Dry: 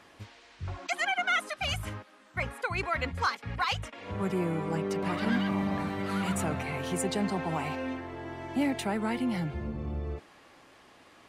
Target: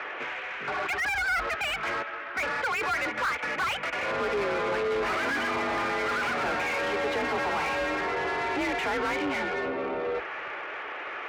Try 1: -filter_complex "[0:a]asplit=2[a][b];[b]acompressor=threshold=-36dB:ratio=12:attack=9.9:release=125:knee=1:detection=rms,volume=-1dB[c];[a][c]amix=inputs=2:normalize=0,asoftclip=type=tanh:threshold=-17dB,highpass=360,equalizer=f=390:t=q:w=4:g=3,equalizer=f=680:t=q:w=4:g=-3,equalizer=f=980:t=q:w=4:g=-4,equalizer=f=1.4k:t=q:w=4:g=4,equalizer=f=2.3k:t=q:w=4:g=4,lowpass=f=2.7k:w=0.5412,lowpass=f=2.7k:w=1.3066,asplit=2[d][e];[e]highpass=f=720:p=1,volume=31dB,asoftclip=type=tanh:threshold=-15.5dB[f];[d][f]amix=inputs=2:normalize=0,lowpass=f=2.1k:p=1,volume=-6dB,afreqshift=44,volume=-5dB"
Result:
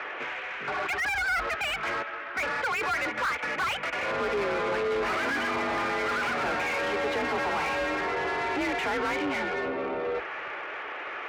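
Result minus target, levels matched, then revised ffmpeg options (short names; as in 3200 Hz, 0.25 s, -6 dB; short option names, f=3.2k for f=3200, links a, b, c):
soft clip: distortion +15 dB
-filter_complex "[0:a]asplit=2[a][b];[b]acompressor=threshold=-36dB:ratio=12:attack=9.9:release=125:knee=1:detection=rms,volume=-1dB[c];[a][c]amix=inputs=2:normalize=0,asoftclip=type=tanh:threshold=-8.5dB,highpass=360,equalizer=f=390:t=q:w=4:g=3,equalizer=f=680:t=q:w=4:g=-3,equalizer=f=980:t=q:w=4:g=-4,equalizer=f=1.4k:t=q:w=4:g=4,equalizer=f=2.3k:t=q:w=4:g=4,lowpass=f=2.7k:w=0.5412,lowpass=f=2.7k:w=1.3066,asplit=2[d][e];[e]highpass=f=720:p=1,volume=31dB,asoftclip=type=tanh:threshold=-15.5dB[f];[d][f]amix=inputs=2:normalize=0,lowpass=f=2.1k:p=1,volume=-6dB,afreqshift=44,volume=-5dB"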